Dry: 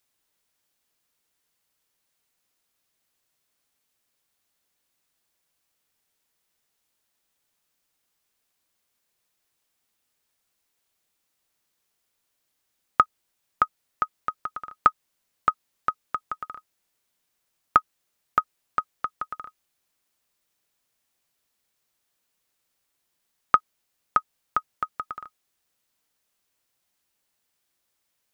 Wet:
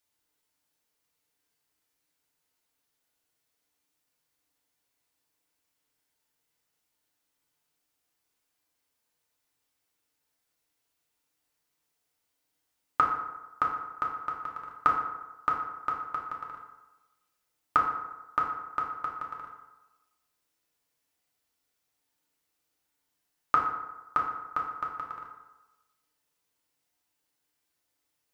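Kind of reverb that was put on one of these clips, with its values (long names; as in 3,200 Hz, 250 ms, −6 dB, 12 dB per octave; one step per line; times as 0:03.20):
feedback delay network reverb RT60 1.1 s, low-frequency decay 0.85×, high-frequency decay 0.55×, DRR −2.5 dB
level −7 dB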